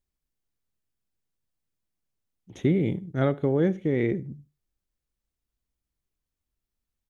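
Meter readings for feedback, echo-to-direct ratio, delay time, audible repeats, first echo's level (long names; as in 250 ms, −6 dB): 24%, −22.5 dB, 75 ms, 2, −22.5 dB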